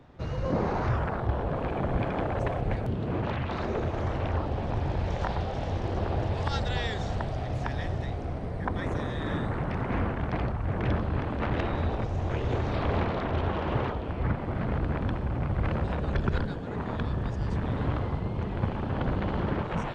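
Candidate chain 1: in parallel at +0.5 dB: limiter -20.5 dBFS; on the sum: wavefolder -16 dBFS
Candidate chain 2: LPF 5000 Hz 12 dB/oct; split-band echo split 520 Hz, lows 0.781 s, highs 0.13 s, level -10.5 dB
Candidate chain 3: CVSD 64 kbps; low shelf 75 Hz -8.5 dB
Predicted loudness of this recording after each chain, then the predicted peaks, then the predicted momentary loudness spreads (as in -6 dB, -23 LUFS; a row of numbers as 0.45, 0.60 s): -25.0, -30.0, -32.0 LUFS; -16.0, -12.5, -14.5 dBFS; 2, 3, 4 LU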